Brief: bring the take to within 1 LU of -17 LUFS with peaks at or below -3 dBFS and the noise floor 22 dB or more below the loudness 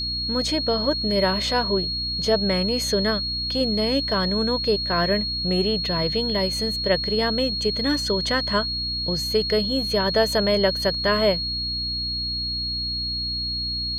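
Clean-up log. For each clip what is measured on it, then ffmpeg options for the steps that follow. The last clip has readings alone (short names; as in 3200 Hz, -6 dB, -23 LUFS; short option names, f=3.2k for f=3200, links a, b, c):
hum 60 Hz; harmonics up to 300 Hz; hum level -32 dBFS; steady tone 4300 Hz; tone level -25 dBFS; loudness -22.0 LUFS; peak -8.0 dBFS; loudness target -17.0 LUFS
-> -af "bandreject=f=60:t=h:w=4,bandreject=f=120:t=h:w=4,bandreject=f=180:t=h:w=4,bandreject=f=240:t=h:w=4,bandreject=f=300:t=h:w=4"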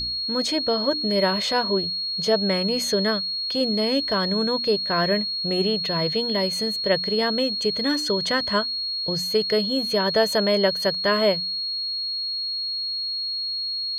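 hum none; steady tone 4300 Hz; tone level -25 dBFS
-> -af "bandreject=f=4.3k:w=30"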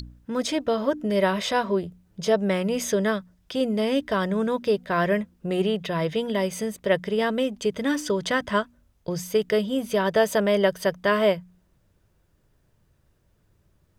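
steady tone none; loudness -25.0 LUFS; peak -9.5 dBFS; loudness target -17.0 LUFS
-> -af "volume=8dB,alimiter=limit=-3dB:level=0:latency=1"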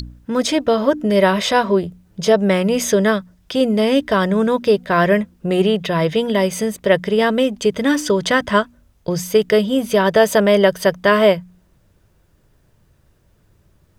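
loudness -17.0 LUFS; peak -3.0 dBFS; noise floor -57 dBFS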